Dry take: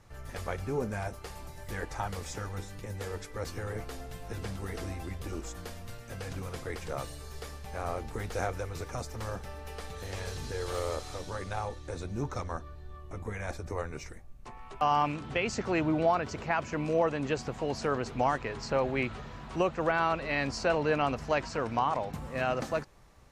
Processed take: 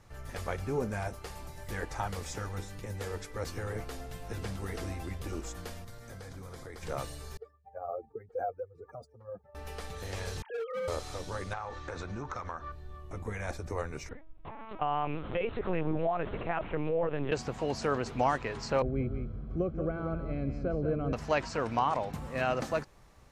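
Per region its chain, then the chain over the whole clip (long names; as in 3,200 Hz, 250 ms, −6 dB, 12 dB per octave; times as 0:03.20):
0:05.84–0:06.83: parametric band 2,700 Hz −13.5 dB 0.21 octaves + downward compressor 3 to 1, threshold −43 dBFS
0:07.37–0:09.55: expanding power law on the bin magnitudes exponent 2.7 + high-pass filter 300 Hz + linearly interpolated sample-rate reduction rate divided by 3×
0:10.42–0:10.88: three sine waves on the formant tracks + hard clipping −32 dBFS
0:11.53–0:12.72: parametric band 1,300 Hz +12 dB 1.8 octaves + downward compressor 8 to 1, threshold −34 dBFS + low-pass filter 7,300 Hz 24 dB per octave
0:14.09–0:17.32: parametric band 470 Hz +6.5 dB 1.4 octaves + downward compressor 3 to 1, threshold −28 dBFS + linear-prediction vocoder at 8 kHz pitch kept
0:18.82–0:21.13: moving average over 48 samples + low-shelf EQ 86 Hz +12 dB + single-tap delay 182 ms −8 dB
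whole clip: no processing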